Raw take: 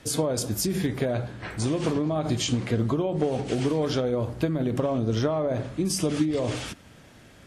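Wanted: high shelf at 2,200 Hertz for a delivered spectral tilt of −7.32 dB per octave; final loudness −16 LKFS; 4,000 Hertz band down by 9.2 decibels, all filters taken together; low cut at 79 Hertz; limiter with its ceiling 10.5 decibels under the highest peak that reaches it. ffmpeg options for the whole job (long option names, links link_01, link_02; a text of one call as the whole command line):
ffmpeg -i in.wav -af "highpass=79,highshelf=frequency=2200:gain=-7,equalizer=frequency=4000:width_type=o:gain=-5.5,volume=15.5dB,alimiter=limit=-7dB:level=0:latency=1" out.wav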